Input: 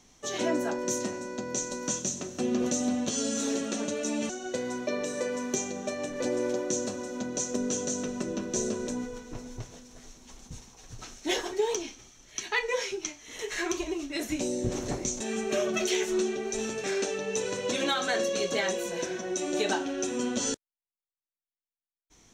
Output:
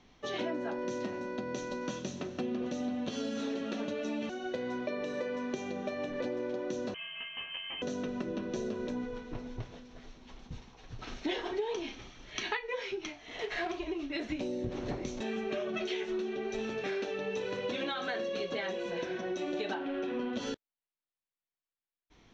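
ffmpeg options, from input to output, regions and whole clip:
ffmpeg -i in.wav -filter_complex "[0:a]asettb=1/sr,asplit=3[link_01][link_02][link_03];[link_01]atrim=end=6.944[link_04];[link_02]atrim=start=6.94:end=7.82,asetpts=PTS-STARTPTS,afade=type=in:duration=0.004:curve=qsin,afade=type=out:start_time=0.876:duration=0.004:curve=qsin,highpass=frequency=640:width=0.5412,highpass=frequency=640:width=1.3066,asplit=2[link_05][link_06];[link_06]adelay=14,volume=-3dB[link_07];[link_05][link_07]amix=inputs=2:normalize=0,atrim=end_sample=38808,lowpass=frequency=3100:width_type=q:width=0.5098,lowpass=frequency=3100:width_type=q:width=0.6013,lowpass=frequency=3100:width_type=q:width=0.9,lowpass=frequency=3100:width_type=q:width=2.563,afreqshift=-3600[link_08];[link_03]atrim=start=7.816[link_09];[link_04][link_08]acrossfade=duration=0.004:curve1=hsin:curve2=qsin[link_10];[link_10][link_09]acrossfade=duration=0.004:curve1=qsin:curve2=hsin,asettb=1/sr,asplit=3[link_11][link_12][link_13];[link_11]atrim=end=11.074[link_14];[link_12]atrim=start=11.07:end=12.57,asetpts=PTS-STARTPTS,afade=type=in:duration=0.004:curve=qsin,afade=type=out:start_time=1.496:duration=0.004:curve=qsin,acontrast=65,asplit=2[link_15][link_16];[link_16]adelay=36,volume=-12.5dB[link_17];[link_15][link_17]amix=inputs=2:normalize=0,atrim=end_sample=66150[link_18];[link_13]atrim=start=12.566[link_19];[link_14][link_18]acrossfade=duration=0.004:curve1=hsin:curve2=qsin[link_20];[link_20][link_19]acrossfade=duration=0.004:curve1=qsin:curve2=hsin,asettb=1/sr,asplit=3[link_21][link_22][link_23];[link_21]atrim=end=13.124[link_24];[link_22]atrim=start=13.12:end=13.79,asetpts=PTS-STARTPTS,afade=type=in:duration=0.004:curve=qsin,afade=type=out:start_time=0.666:duration=0.004:curve=qsin,equalizer=frequency=700:width_type=o:width=0.25:gain=14,acrusher=bits=2:mode=log:mix=0:aa=0.000001[link_25];[link_23]atrim=start=13.786[link_26];[link_24][link_25]acrossfade=duration=0.004:curve1=hsin:curve2=qsin[link_27];[link_27][link_26]acrossfade=duration=0.004:curve1=qsin:curve2=hsin,asettb=1/sr,asplit=3[link_28][link_29][link_30];[link_28]atrim=end=19.744[link_31];[link_29]atrim=start=19.74:end=20.33,asetpts=PTS-STARTPTS,afade=type=in:duration=0.004:curve=qsin,afade=type=out:start_time=0.586:duration=0.004:curve=qsin,aeval=exprs='val(0)+0.5*0.01*sgn(val(0))':channel_layout=same,lowpass=3100,equalizer=frequency=72:width=1.1:gain=-12[link_32];[link_30]atrim=start=20.326[link_33];[link_31][link_32]acrossfade=duration=0.004:curve1=hsin:curve2=qsin[link_34];[link_34][link_33]acrossfade=duration=0.004:curve1=qsin:curve2=hsin,lowpass=frequency=4000:width=0.5412,lowpass=frequency=4000:width=1.3066,acompressor=threshold=-32dB:ratio=6" out.wav

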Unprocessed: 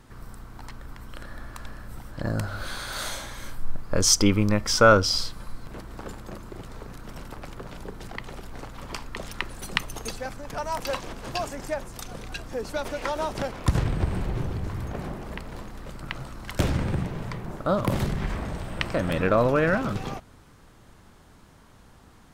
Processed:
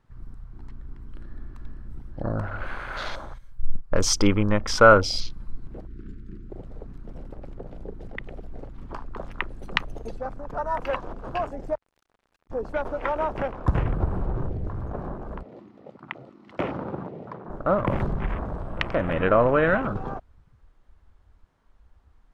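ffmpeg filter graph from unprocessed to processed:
ffmpeg -i in.wav -filter_complex "[0:a]asettb=1/sr,asplit=3[link_01][link_02][link_03];[link_01]atrim=end=3.384[link_04];[link_02]atrim=start=3.38:end=4.02,asetpts=PTS-STARTPTS,afade=type=in:duration=0.004:curve=qsin,afade=type=out:start_time=0.636:duration=0.004:curve=qsin,agate=range=-11dB:threshold=-26dB:ratio=16:release=100:detection=peak,highshelf=frequency=8400:gain=10.5[link_05];[link_03]atrim=start=4.016[link_06];[link_04][link_05]acrossfade=duration=0.004:curve1=hsin:curve2=qsin[link_07];[link_07][link_06]acrossfade=duration=0.004:curve1=qsin:curve2=hsin,asettb=1/sr,asplit=3[link_08][link_09][link_10];[link_08]atrim=end=5.874[link_11];[link_09]atrim=start=5.87:end=6.5,asetpts=PTS-STARTPTS,afade=type=in:duration=0.004:curve=qsin,afade=type=out:start_time=0.626:duration=0.004:curve=qsin,asuperstop=centerf=720:order=8:qfactor=0.73,highshelf=frequency=6500:gain=-10[link_12];[link_10]atrim=start=6.496[link_13];[link_11][link_12]acrossfade=duration=0.004:curve1=hsin:curve2=qsin[link_14];[link_14][link_13]acrossfade=duration=0.004:curve1=qsin:curve2=hsin,asettb=1/sr,asplit=3[link_15][link_16][link_17];[link_15]atrim=end=11.754[link_18];[link_16]atrim=start=11.75:end=12.5,asetpts=PTS-STARTPTS,afade=type=in:duration=0.004:curve=qsin,afade=type=out:start_time=0.746:duration=0.004:curve=qsin,acompressor=threshold=-35dB:ratio=12:attack=3.2:release=140:knee=1:detection=peak,asoftclip=type=hard:threshold=-31dB,acrusher=bits=4:mix=0:aa=0.5[link_19];[link_17]atrim=start=12.496[link_20];[link_18][link_19]acrossfade=duration=0.004:curve1=hsin:curve2=qsin[link_21];[link_21][link_20]acrossfade=duration=0.004:curve1=qsin:curve2=hsin,asettb=1/sr,asplit=3[link_22][link_23][link_24];[link_22]atrim=end=15.434[link_25];[link_23]atrim=start=15.43:end=17.5,asetpts=PTS-STARTPTS,afade=type=in:duration=0.004:curve=qsin,afade=type=out:start_time=2.066:duration=0.004:curve=qsin,highpass=220,lowpass=5300,bandreject=frequency=1600:width=7.2[link_26];[link_24]atrim=start=17.496[link_27];[link_25][link_26]acrossfade=duration=0.004:curve1=hsin:curve2=qsin[link_28];[link_28][link_27]acrossfade=duration=0.004:curve1=qsin:curve2=hsin,afwtdn=0.0158,lowpass=frequency=2100:poles=1,equalizer=frequency=150:width=0.43:gain=-6,volume=4.5dB" out.wav

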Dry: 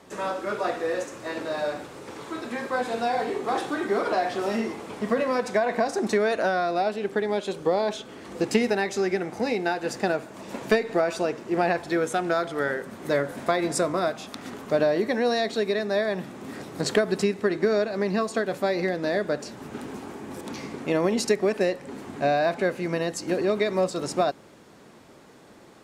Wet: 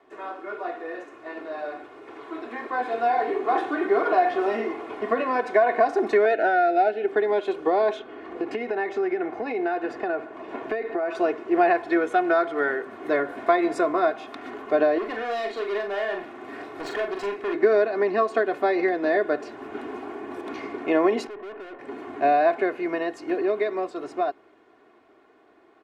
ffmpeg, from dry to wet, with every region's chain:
ffmpeg -i in.wav -filter_complex "[0:a]asettb=1/sr,asplit=3[link_01][link_02][link_03];[link_01]atrim=end=6.254[link_04];[link_02]atrim=start=6.25:end=7.08,asetpts=PTS-STARTPTS,afade=type=in:duration=0.004:curve=qsin,afade=type=out:start_time=0.826:duration=0.004:curve=qsin,asuperstop=centerf=1100:order=12:qfactor=3.5,equalizer=frequency=120:width_type=o:width=0.71:gain=-9,adynamicsmooth=sensitivity=3:basefreq=4700[link_05];[link_03]atrim=start=7.076[link_06];[link_04][link_05]acrossfade=duration=0.004:curve1=hsin:curve2=qsin[link_07];[link_07][link_06]acrossfade=duration=0.004:curve1=qsin:curve2=hsin,asettb=1/sr,asplit=3[link_08][link_09][link_10];[link_08]atrim=end=7.994[link_11];[link_09]atrim=start=7.99:end=11.15,asetpts=PTS-STARTPTS,afade=type=in:duration=0.004:curve=qsin,afade=type=out:start_time=3.156:duration=0.004:curve=qsin,lowpass=frequency=2800:poles=1,acompressor=threshold=-25dB:ratio=10:attack=3.2:release=140:knee=1:detection=peak[link_12];[link_10]atrim=start=11.146[link_13];[link_11][link_12]acrossfade=duration=0.004:curve1=hsin:curve2=qsin[link_14];[link_14][link_13]acrossfade=duration=0.004:curve1=qsin:curve2=hsin,asettb=1/sr,asplit=3[link_15][link_16][link_17];[link_15]atrim=end=14.984[link_18];[link_16]atrim=start=14.98:end=17.54,asetpts=PTS-STARTPTS,afade=type=in:duration=0.004:curve=qsin,afade=type=out:start_time=2.556:duration=0.004:curve=qsin,asoftclip=type=hard:threshold=-27dB,equalizer=frequency=230:width=0.49:gain=-4.5,asplit=2[link_19][link_20];[link_20]adelay=40,volume=-5dB[link_21];[link_19][link_21]amix=inputs=2:normalize=0,atrim=end_sample=112896[link_22];[link_17]atrim=start=17.536[link_23];[link_18][link_22]acrossfade=duration=0.004:curve1=hsin:curve2=qsin[link_24];[link_24][link_23]acrossfade=duration=0.004:curve1=qsin:curve2=hsin,asettb=1/sr,asplit=3[link_25][link_26][link_27];[link_25]atrim=end=21.274[link_28];[link_26]atrim=start=21.27:end=21.79,asetpts=PTS-STARTPTS,afade=type=in:duration=0.004:curve=qsin,afade=type=out:start_time=0.516:duration=0.004:curve=qsin,lowpass=1500,aeval=exprs='(tanh(100*val(0)+0.4)-tanh(0.4))/100':channel_layout=same[link_29];[link_27]atrim=start=21.786[link_30];[link_28][link_29]acrossfade=duration=0.004:curve1=hsin:curve2=qsin[link_31];[link_31][link_30]acrossfade=duration=0.004:curve1=qsin:curve2=hsin,acrossover=split=270 2900:gain=0.2 1 0.0891[link_32][link_33][link_34];[link_32][link_33][link_34]amix=inputs=3:normalize=0,aecho=1:1:2.8:0.66,dynaudnorm=framelen=170:gausssize=31:maxgain=11.5dB,volume=-6dB" out.wav

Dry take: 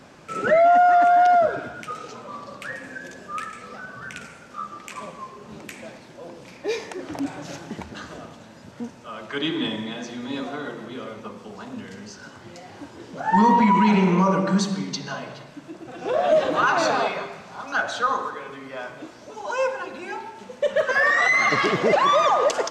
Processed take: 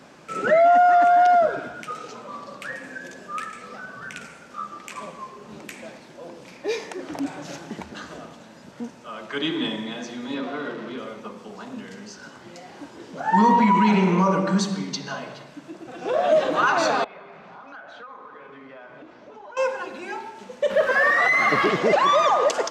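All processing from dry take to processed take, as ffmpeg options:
ffmpeg -i in.wav -filter_complex "[0:a]asettb=1/sr,asplit=3[link_01][link_02][link_03];[link_01]atrim=end=10.344[link_04];[link_02]atrim=start=10.34:end=10.98,asetpts=PTS-STARTPTS,afade=type=in:duration=0.004:curve=qsin,afade=type=out:start_time=0.636:duration=0.004:curve=qsin,aeval=exprs='val(0)+0.5*0.015*sgn(val(0))':channel_layout=same,highpass=130,lowpass=3500,bandreject=frequency=790:width=6.4[link_05];[link_03]atrim=start=10.976[link_06];[link_04][link_05]acrossfade=duration=0.004:curve1=hsin:curve2=qsin[link_07];[link_07][link_06]acrossfade=duration=0.004:curve1=qsin:curve2=hsin,asettb=1/sr,asplit=3[link_08][link_09][link_10];[link_08]atrim=end=17.044[link_11];[link_09]atrim=start=17.04:end=19.57,asetpts=PTS-STARTPTS,afade=type=in:duration=0.004:curve=qsin,afade=type=out:start_time=2.526:duration=0.004:curve=qsin,aeval=exprs='if(lt(val(0),0),0.708*val(0),val(0))':channel_layout=same,lowpass=2700,acompressor=threshold=-39dB:ratio=6:attack=3.2:release=140:knee=1:detection=peak[link_12];[link_10]atrim=start=19.566[link_13];[link_11][link_12]acrossfade=duration=0.004:curve1=hsin:curve2=qsin[link_14];[link_14][link_13]acrossfade=duration=0.004:curve1=qsin:curve2=hsin,asettb=1/sr,asplit=3[link_15][link_16][link_17];[link_15]atrim=end=20.704[link_18];[link_16]atrim=start=20.7:end=21.7,asetpts=PTS-STARTPTS,afade=type=in:duration=0.004:curve=qsin,afade=type=out:start_time=0.996:duration=0.004:curve=qsin,aeval=exprs='val(0)+0.5*0.0473*sgn(val(0))':channel_layout=same,aemphasis=mode=reproduction:type=75fm[link_19];[link_17]atrim=start=21.696[link_20];[link_18][link_19]acrossfade=duration=0.004:curve1=hsin:curve2=qsin[link_21];[link_21][link_20]acrossfade=duration=0.004:curve1=qsin:curve2=hsin,highpass=60,equalizer=frequency=100:width=3.5:gain=-14" out.wav

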